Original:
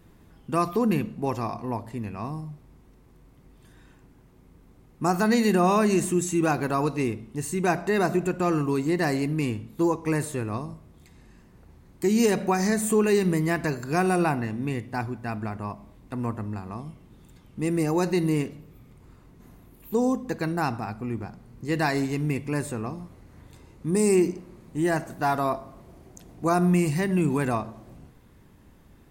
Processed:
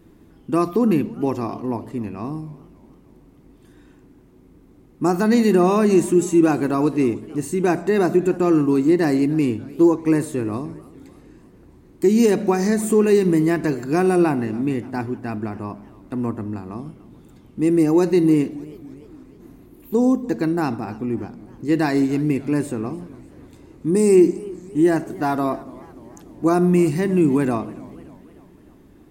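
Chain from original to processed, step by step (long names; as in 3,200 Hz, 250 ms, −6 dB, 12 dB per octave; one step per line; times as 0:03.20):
parametric band 310 Hz +10.5 dB 1 octave
feedback echo with a swinging delay time 295 ms, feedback 56%, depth 167 cents, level −21 dB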